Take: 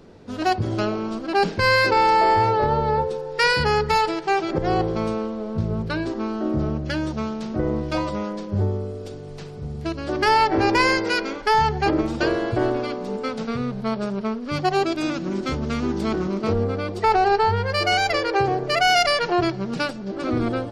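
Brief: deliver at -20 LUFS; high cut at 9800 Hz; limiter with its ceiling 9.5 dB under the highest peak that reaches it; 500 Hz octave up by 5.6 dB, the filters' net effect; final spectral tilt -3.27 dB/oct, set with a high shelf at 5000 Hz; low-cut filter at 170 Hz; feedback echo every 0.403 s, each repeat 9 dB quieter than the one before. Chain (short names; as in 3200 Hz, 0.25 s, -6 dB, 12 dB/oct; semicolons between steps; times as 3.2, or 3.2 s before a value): HPF 170 Hz; LPF 9800 Hz; bell 500 Hz +7 dB; high shelf 5000 Hz +8 dB; limiter -14 dBFS; feedback echo 0.403 s, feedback 35%, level -9 dB; gain +2.5 dB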